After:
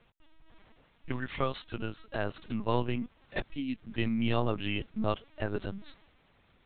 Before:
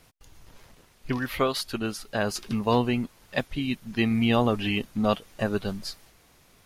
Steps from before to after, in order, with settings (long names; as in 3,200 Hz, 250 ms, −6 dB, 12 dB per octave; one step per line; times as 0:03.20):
linear-prediction vocoder at 8 kHz pitch kept
level −6 dB